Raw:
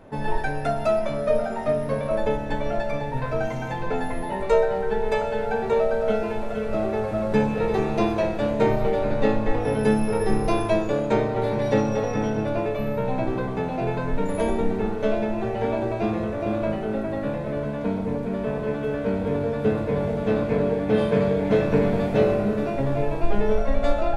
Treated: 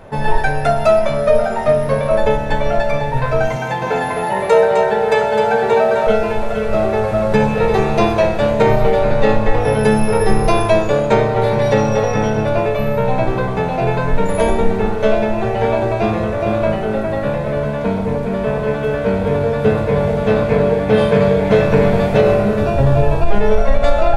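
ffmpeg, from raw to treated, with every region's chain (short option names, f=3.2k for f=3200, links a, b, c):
-filter_complex "[0:a]asettb=1/sr,asplit=3[a][b][c];[a]atrim=end=3.564[d];[b]atrim=start=3.56:end=6.07,asetpts=PTS-STARTPTS,afade=t=in:d=0.004:c=qsin,afade=t=out:st=2.506:d=0.004:c=qsin,highpass=140,aecho=1:1:258:0.596,atrim=end_sample=110691[e];[c]atrim=start=6.066[f];[d][e]acrossfade=d=0.004:c1=hsin:c2=qsin[g];[g][f]acrossfade=d=0.004:c1=qsin:c2=hsin,asettb=1/sr,asplit=3[h][i][j];[h]atrim=end=22.614[k];[i]atrim=start=22.61:end=23.26,asetpts=PTS-STARTPTS,afade=t=in:d=0.004:c=qsin,afade=t=out:st=0.646:d=0.004:c=qsin,equalizer=f=73:w=1.1:g=11.5,bandreject=f=2.1k:w=6.2[l];[j]atrim=start=23.256[m];[k][l]acrossfade=d=0.004:c1=hsin:c2=qsin[n];[n][m]acrossfade=d=0.004:c1=qsin:c2=hsin,equalizer=f=280:t=o:w=0.71:g=-9.5,alimiter=level_in=11.5dB:limit=-1dB:release=50:level=0:latency=1,volume=-1dB"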